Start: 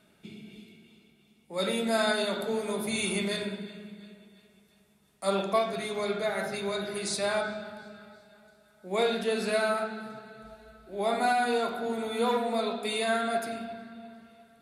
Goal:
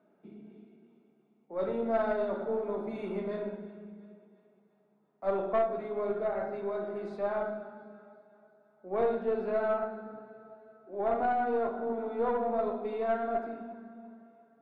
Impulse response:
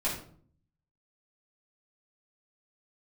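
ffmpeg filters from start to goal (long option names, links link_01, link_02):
-filter_complex "[0:a]asuperpass=centerf=500:order=4:qfactor=0.6,asplit=2[link_01][link_02];[1:a]atrim=start_sample=2205,adelay=21[link_03];[link_02][link_03]afir=irnorm=-1:irlink=0,volume=-17dB[link_04];[link_01][link_04]amix=inputs=2:normalize=0,aeval=exprs='(tanh(8.91*val(0)+0.35)-tanh(0.35))/8.91':channel_layout=same"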